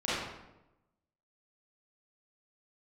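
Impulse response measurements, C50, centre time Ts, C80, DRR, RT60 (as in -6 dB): -3.5 dB, 90 ms, 1.0 dB, -11.5 dB, 0.95 s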